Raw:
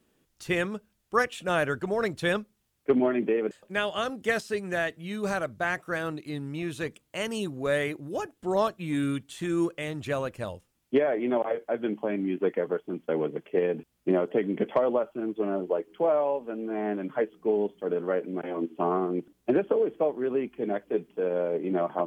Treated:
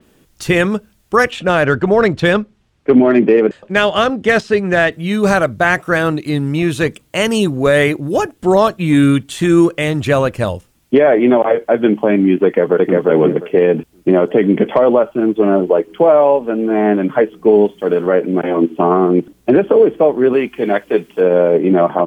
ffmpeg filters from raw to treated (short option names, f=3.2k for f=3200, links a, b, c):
-filter_complex "[0:a]asettb=1/sr,asplit=3[a][b][c];[a]atrim=end=1.314[d];[b]atrim=start=1.31:end=4.92,asetpts=PTS-STARTPTS,afade=t=in:d=0.004:c=qsin,afade=t=out:st=3.606:d=0.004:c=qsin,adynamicsmooth=sensitivity=4:basefreq=4.5k[e];[c]atrim=start=4.916[f];[d][e]acrossfade=d=0.004:c1=hsin:c2=qsin[g];[g][f]acrossfade=d=0.004:c1=qsin:c2=hsin,asplit=2[h][i];[i]afade=t=in:st=12.44:d=0.01,afade=t=out:st=12.98:d=0.01,aecho=0:1:350|700|1050:0.891251|0.133688|0.0200531[j];[h][j]amix=inputs=2:normalize=0,asettb=1/sr,asplit=3[k][l][m];[k]atrim=end=17.654[n];[l]atrim=start=17.65:end=18.06,asetpts=PTS-STARTPTS,afade=t=in:d=0.004:c=qsin,afade=t=out:st=0.406:d=0.004:c=qsin,tiltshelf=f=1.4k:g=-3.5[o];[m]atrim=start=18.056[p];[n][o]acrossfade=d=0.004:c1=hsin:c2=qsin[q];[q][p]acrossfade=d=0.004:c1=qsin:c2=hsin,asettb=1/sr,asplit=3[r][s][t];[r]atrim=end=20.334[u];[s]atrim=start=20.33:end=21.21,asetpts=PTS-STARTPTS,afade=t=in:d=0.004:c=qsin,afade=t=out:st=0.876:d=0.004:c=qsin,tiltshelf=f=820:g=-6[v];[t]atrim=start=21.206[w];[u][v]acrossfade=d=0.004:c1=hsin:c2=qsin[x];[x][w]acrossfade=d=0.004:c1=qsin:c2=hsin,lowshelf=f=200:g=3.5,alimiter=level_in=17dB:limit=-1dB:release=50:level=0:latency=1,adynamicequalizer=threshold=0.0282:dfrequency=4900:dqfactor=0.7:tfrequency=4900:tqfactor=0.7:attack=5:release=100:ratio=0.375:range=1.5:mode=cutabove:tftype=highshelf,volume=-1dB"